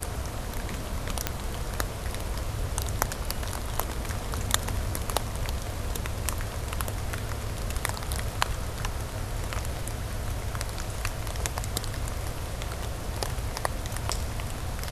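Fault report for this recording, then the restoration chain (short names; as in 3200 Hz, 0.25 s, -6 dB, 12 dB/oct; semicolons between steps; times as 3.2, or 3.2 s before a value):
1.27 pop -7 dBFS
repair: de-click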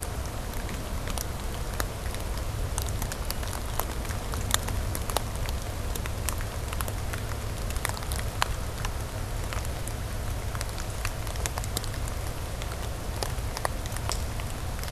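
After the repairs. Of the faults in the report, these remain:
none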